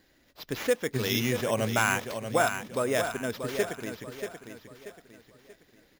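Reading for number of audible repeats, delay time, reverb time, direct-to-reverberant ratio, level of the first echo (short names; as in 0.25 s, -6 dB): 4, 0.634 s, none, none, -8.0 dB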